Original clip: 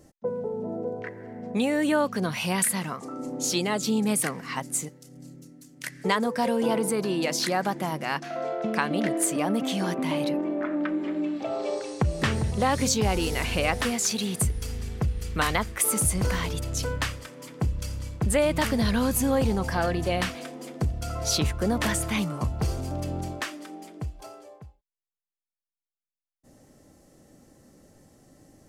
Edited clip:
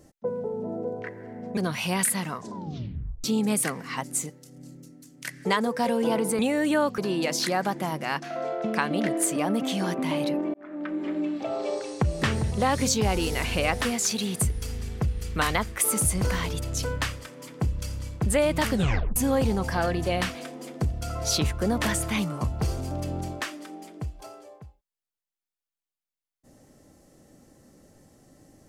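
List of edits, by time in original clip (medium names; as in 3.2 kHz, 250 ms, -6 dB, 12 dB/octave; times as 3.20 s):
1.57–2.16 s: move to 6.98 s
2.91 s: tape stop 0.92 s
10.54–11.09 s: fade in
18.72 s: tape stop 0.44 s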